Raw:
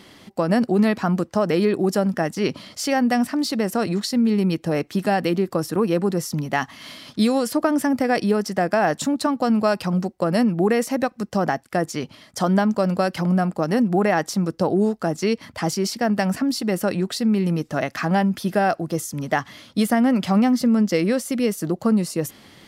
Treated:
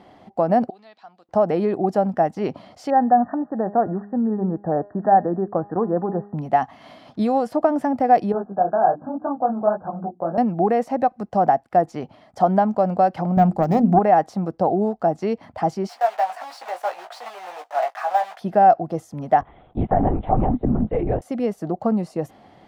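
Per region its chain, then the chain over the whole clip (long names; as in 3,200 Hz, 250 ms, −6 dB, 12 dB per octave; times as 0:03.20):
0:00.70–0:01.29: de-essing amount 80% + resonant band-pass 3,900 Hz, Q 3.4
0:02.90–0:06.38: linear-phase brick-wall low-pass 1,900 Hz + hum removal 203.7 Hz, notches 34
0:08.32–0:10.38: linear-phase brick-wall low-pass 1,700 Hz + mains-hum notches 60/120/180/240/300/360 Hz + micro pitch shift up and down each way 44 cents
0:13.37–0:13.99: phase distortion by the signal itself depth 0.18 ms + bass and treble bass +11 dB, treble +9 dB + mains-hum notches 50/100/150/200/250/300/350/400 Hz
0:15.89–0:18.41: one scale factor per block 3 bits + high-pass filter 690 Hz 24 dB per octave + double-tracking delay 17 ms −6 dB
0:19.41–0:21.22: high-shelf EQ 2,200 Hz −11.5 dB + linear-prediction vocoder at 8 kHz whisper
whole clip: low-pass filter 1,100 Hz 6 dB per octave; de-essing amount 85%; parametric band 740 Hz +15 dB 0.59 octaves; level −3 dB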